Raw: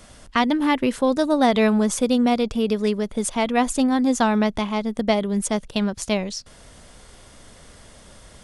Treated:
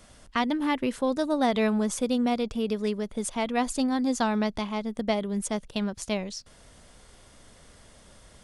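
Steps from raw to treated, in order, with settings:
0:03.51–0:04.68: parametric band 4,600 Hz +6 dB 0.33 octaves
level −6.5 dB

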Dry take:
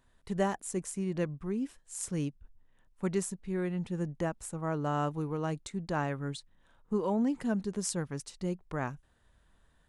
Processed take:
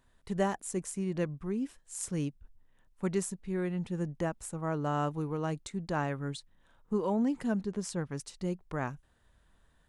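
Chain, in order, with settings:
0:07.61–0:08.11: high-shelf EQ 5,800 Hz −11 dB

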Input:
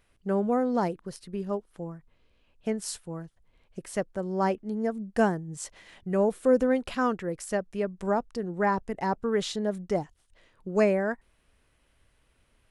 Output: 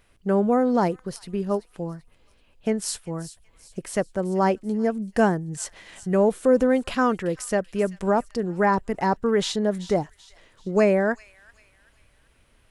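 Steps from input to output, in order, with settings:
in parallel at 0 dB: brickwall limiter −19 dBFS, peak gain reduction 8 dB
on the sum: delay with a high-pass on its return 385 ms, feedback 39%, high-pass 2,700 Hz, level −13.5 dB

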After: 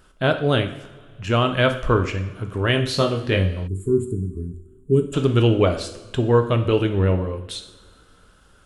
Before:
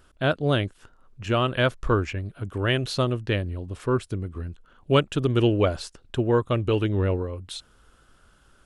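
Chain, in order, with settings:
0:02.91–0:04.05: flutter between parallel walls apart 3.6 metres, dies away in 0.21 s
coupled-rooms reverb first 0.63 s, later 2.3 s, from −17 dB, DRR 5.5 dB
0:03.68–0:05.14: gain on a spectral selection 450–6,800 Hz −27 dB
level +3 dB

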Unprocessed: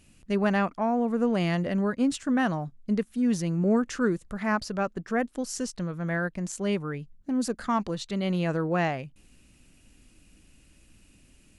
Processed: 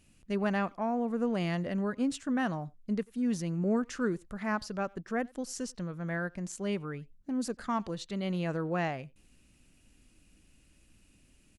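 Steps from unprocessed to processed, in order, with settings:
far-end echo of a speakerphone 90 ms, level −25 dB
level −5.5 dB

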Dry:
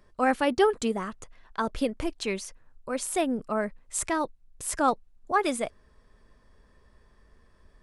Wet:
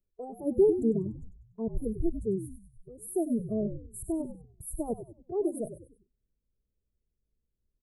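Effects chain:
inverse Chebyshev band-stop filter 1,400–5,300 Hz, stop band 60 dB
noise reduction from a noise print of the clip's start 22 dB
noise gate −59 dBFS, range −6 dB
low-shelf EQ 220 Hz +6 dB
echo with shifted repeats 97 ms, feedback 40%, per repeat −64 Hz, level −10 dB

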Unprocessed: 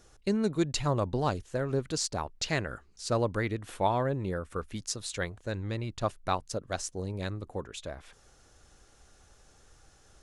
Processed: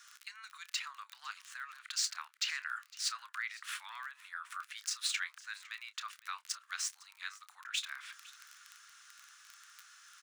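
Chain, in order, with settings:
running median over 3 samples
downward compressor 2 to 1, threshold −35 dBFS, peak gain reduction 8 dB
spectral tilt −1.5 dB per octave
surface crackle 18 per second −43 dBFS
dynamic equaliser 2,300 Hz, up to +4 dB, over −51 dBFS, Q 1.1
brickwall limiter −31 dBFS, peak gain reduction 12 dB
Butterworth high-pass 1,200 Hz 48 dB per octave
double-tracking delay 29 ms −14 dB
single-tap delay 507 ms −20.5 dB
level +9.5 dB

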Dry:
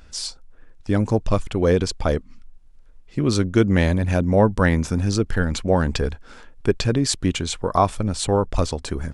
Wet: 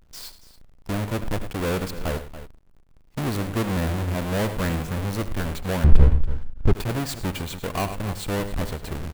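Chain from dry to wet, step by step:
each half-wave held at its own peak
dynamic equaliser 5,600 Hz, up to −6 dB, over −38 dBFS, Q 1.3
multi-tap delay 76/106/282 ms −17/−15/−15.5 dB
leveller curve on the samples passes 2
0:05.84–0:06.73: RIAA equalisation playback
level −16.5 dB

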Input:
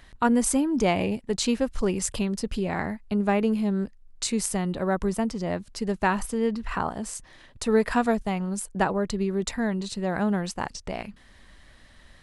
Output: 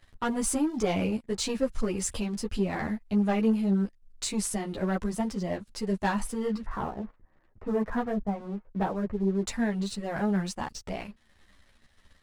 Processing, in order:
0:06.65–0:09.46: Bessel low-pass filter 1,100 Hz, order 8
leveller curve on the samples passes 2
string-ensemble chorus
level −7 dB

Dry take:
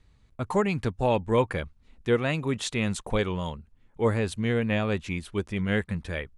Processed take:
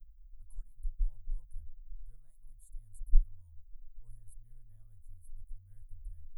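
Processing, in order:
inverse Chebyshev band-stop filter 150–5,800 Hz, stop band 70 dB
level +14.5 dB

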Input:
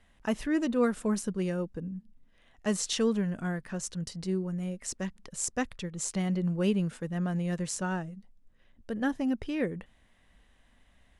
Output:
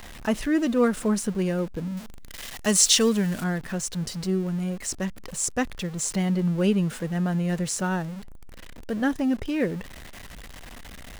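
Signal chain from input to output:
converter with a step at zero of −41 dBFS
0:01.97–0:03.44: high-shelf EQ 2,700 Hz +11 dB
level +4.5 dB

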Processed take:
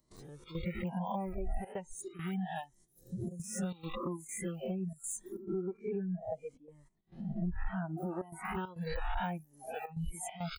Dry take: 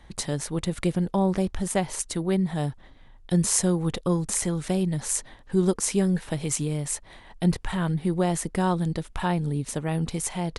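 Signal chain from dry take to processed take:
peak hold with a rise ahead of every peak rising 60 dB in 1.54 s
de-essing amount 90%
0:05.61–0:07.98: low-pass filter 1,400 Hz 6 dB per octave
noise reduction from a noise print of the clip's start 25 dB
noise gate −57 dBFS, range −9 dB
reverb reduction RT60 1.1 s
downward compressor 4 to 1, threshold −40 dBFS, peak gain reduction 19 dB
gate pattern ".xxx.xxxxxxxxxx" 137 BPM −12 dB
flanger whose copies keep moving one way rising 0.73 Hz
level +8.5 dB

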